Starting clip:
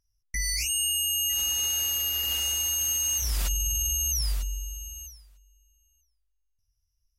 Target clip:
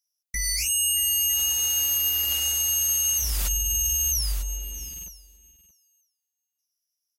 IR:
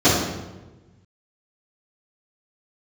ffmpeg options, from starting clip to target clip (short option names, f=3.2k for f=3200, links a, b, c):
-filter_complex "[0:a]highshelf=f=7.2k:g=7,acrossover=split=2500[a][b];[a]aeval=exprs='val(0)*gte(abs(val(0)),0.00668)':c=same[c];[c][b]amix=inputs=2:normalize=0,aecho=1:1:626:0.112"